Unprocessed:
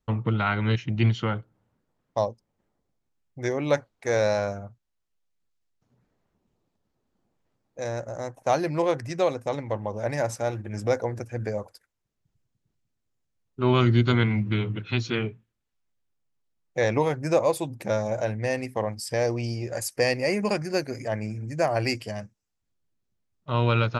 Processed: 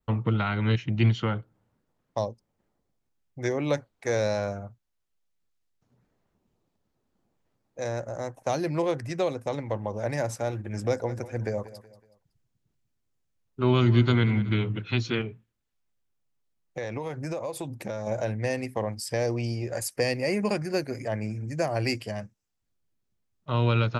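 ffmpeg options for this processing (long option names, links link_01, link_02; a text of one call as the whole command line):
ffmpeg -i in.wav -filter_complex "[0:a]asettb=1/sr,asplit=3[link_01][link_02][link_03];[link_01]atrim=end=10.594[link_04];[link_02]atrim=start=10.59:end=14.52,asetpts=PTS-STARTPTS,afade=type=in:duration=0.004:curve=qsin,afade=type=out:start_time=3.926:duration=0.004:curve=qsin,aecho=1:1:186|372|558:0.141|0.0551|0.0215,atrim=end_sample=173313[link_05];[link_03]atrim=start=14.516[link_06];[link_04][link_05]acrossfade=duration=0.004:curve1=hsin:curve2=qsin[link_07];[link_07][link_06]acrossfade=duration=0.004:curve1=qsin:curve2=hsin,asettb=1/sr,asplit=3[link_08][link_09][link_10];[link_08]atrim=end=15.214[link_11];[link_09]atrim=start=15.21:end=18.07,asetpts=PTS-STARTPTS,afade=type=in:duration=0.004:curve=qsin,afade=type=out:start_time=2.856:duration=0.004:curve=qsin,acompressor=threshold=-29dB:ratio=6:attack=3.2:release=140:knee=1:detection=peak[link_12];[link_10]atrim=start=18.066[link_13];[link_11][link_12]acrossfade=duration=0.004:curve1=hsin:curve2=qsin[link_14];[link_14][link_13]acrossfade=duration=0.004:curve1=qsin:curve2=hsin,adynamicequalizer=threshold=0.00224:dfrequency=5900:dqfactor=1.8:tfrequency=5900:tqfactor=1.8:attack=5:release=100:ratio=0.375:range=2.5:mode=cutabove:tftype=bell,acrossover=split=420|3000[link_15][link_16][link_17];[link_16]acompressor=threshold=-29dB:ratio=3[link_18];[link_15][link_18][link_17]amix=inputs=3:normalize=0" out.wav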